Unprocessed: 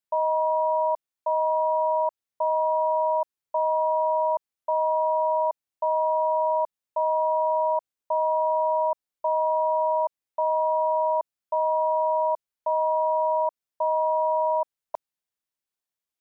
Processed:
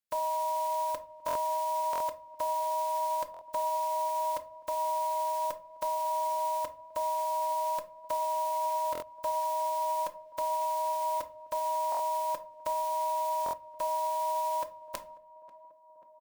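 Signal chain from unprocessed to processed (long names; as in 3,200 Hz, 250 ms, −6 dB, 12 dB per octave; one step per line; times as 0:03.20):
spectral envelope flattened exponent 0.3
comb filter 3.8 ms, depth 47%
on a send: tape delay 539 ms, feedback 87%, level −18 dB, low-pass 1,000 Hz
on the sum: rectangular room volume 220 cubic metres, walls furnished, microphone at 0.64 metres
buffer that repeats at 0:01.26/0:01.91/0:03.32/0:08.93/0:11.90/0:13.44, samples 1,024, times 3
level −5.5 dB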